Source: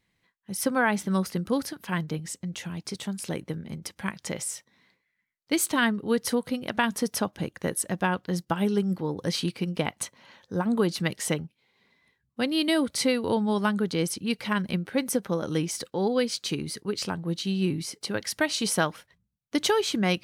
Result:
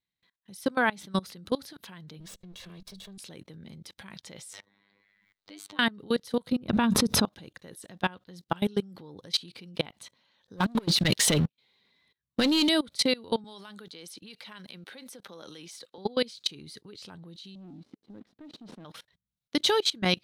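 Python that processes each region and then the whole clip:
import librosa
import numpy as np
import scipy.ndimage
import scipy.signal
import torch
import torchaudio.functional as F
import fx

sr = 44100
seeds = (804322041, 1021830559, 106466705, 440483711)

y = fx.chain(x, sr, fx.lower_of_two(delay_ms=1.8),
    fx.peak_eq(hz=190.0, db=12.0, octaves=0.22), at=(2.2, 3.18))
y = fx.chain(y, sr, fx.lowpass(hz=2400.0, slope=6),
    fx.robotise(hz=100.0),
    fx.band_squash(depth_pct=70), at=(4.53, 5.79))
y = fx.chain(y, sr, fx.tilt_shelf(db=8.0, hz=1100.0),
    fx.comb(ms=0.8, depth=0.34),
    fx.pre_swell(db_per_s=53.0), at=(6.52, 7.25))
y = fx.chain(y, sr, fx.leveller(passes=3),
    fx.over_compress(threshold_db=-22.0, ratio=-1.0), at=(10.57, 12.69))
y = fx.chain(y, sr, fx.highpass(hz=570.0, slope=6),
    fx.band_squash(depth_pct=40), at=(13.44, 15.98))
y = fx.chain(y, sr, fx.cvsd(bps=64000),
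    fx.bandpass_q(hz=240.0, q=2.2),
    fx.leveller(passes=2), at=(17.55, 18.85))
y = fx.peak_eq(y, sr, hz=3800.0, db=10.5, octaves=0.59)
y = fx.level_steps(y, sr, step_db=23)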